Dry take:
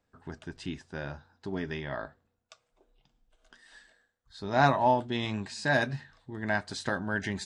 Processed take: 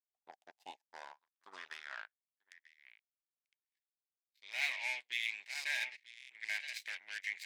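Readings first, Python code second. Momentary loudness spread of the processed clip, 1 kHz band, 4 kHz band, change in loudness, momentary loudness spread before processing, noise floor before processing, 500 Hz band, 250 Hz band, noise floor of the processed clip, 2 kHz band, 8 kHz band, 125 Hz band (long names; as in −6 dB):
19 LU, −23.5 dB, −3.5 dB, −8.5 dB, 18 LU, −79 dBFS, −29.0 dB, below −35 dB, below −85 dBFS, −6.0 dB, −5.0 dB, below −40 dB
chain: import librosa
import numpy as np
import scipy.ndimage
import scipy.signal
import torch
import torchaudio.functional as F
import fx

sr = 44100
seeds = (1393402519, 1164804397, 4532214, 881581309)

y = x + 10.0 ** (-10.0 / 20.0) * np.pad(x, (int(940 * sr / 1000.0), 0))[:len(x)]
y = 10.0 ** (-26.5 / 20.0) * np.tanh(y / 10.0 ** (-26.5 / 20.0))
y = fx.power_curve(y, sr, exponent=3.0)
y = fx.peak_eq(y, sr, hz=1300.0, db=-13.0, octaves=0.67)
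y = fx.filter_sweep_highpass(y, sr, from_hz=770.0, to_hz=2200.0, start_s=0.55, end_s=2.94, q=6.8)
y = fx.buffer_glitch(y, sr, at_s=(6.18,), block=1024, repeats=4)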